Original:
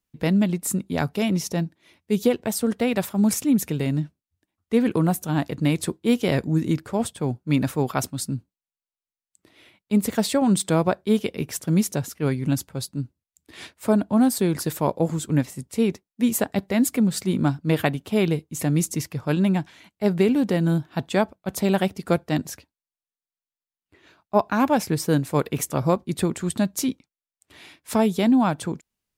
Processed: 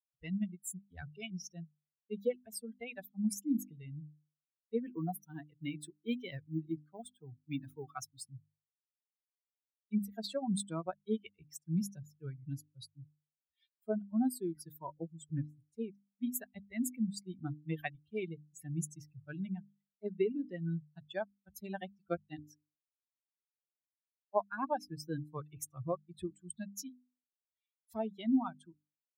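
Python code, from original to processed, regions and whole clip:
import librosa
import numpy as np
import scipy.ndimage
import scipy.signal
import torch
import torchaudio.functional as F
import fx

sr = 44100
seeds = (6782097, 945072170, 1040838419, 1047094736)

y = fx.chain(x, sr, fx.law_mismatch(coded='mu'),
    fx.highpass(hz=120.0, slope=12), at=(4.86, 8.24))
y = fx.bin_expand(y, sr, power=3.0)
y = fx.hum_notches(y, sr, base_hz=50, count=6)
y = y * 10.0 ** (-8.0 / 20.0)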